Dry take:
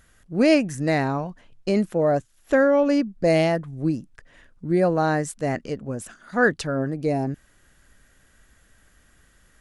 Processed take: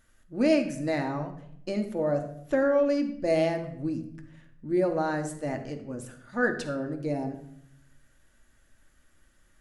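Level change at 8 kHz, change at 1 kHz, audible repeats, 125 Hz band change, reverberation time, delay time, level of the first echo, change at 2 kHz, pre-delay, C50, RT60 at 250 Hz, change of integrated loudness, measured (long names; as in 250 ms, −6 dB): −7.5 dB, −7.5 dB, no echo audible, −8.5 dB, 0.70 s, no echo audible, no echo audible, −7.0 dB, 3 ms, 10.0 dB, 1.0 s, −6.0 dB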